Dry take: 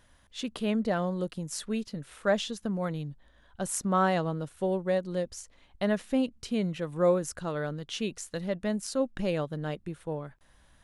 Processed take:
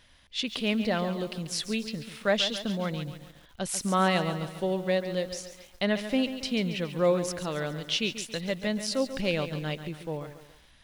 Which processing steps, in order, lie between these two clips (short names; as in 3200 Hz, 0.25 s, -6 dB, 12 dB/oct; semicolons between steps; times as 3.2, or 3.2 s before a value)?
band shelf 3300 Hz +9 dB; lo-fi delay 0.139 s, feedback 55%, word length 8-bit, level -10.5 dB